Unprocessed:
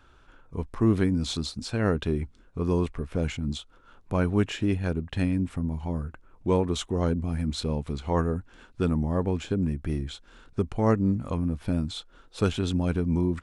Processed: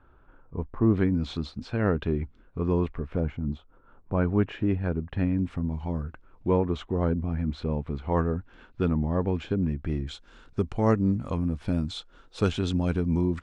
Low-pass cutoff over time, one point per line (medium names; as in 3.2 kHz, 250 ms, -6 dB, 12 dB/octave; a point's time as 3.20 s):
1.3 kHz
from 0.94 s 2.6 kHz
from 3.20 s 1.2 kHz
from 4.17 s 1.9 kHz
from 5.39 s 4.3 kHz
from 6.48 s 2.1 kHz
from 8.12 s 3.4 kHz
from 10.07 s 7.1 kHz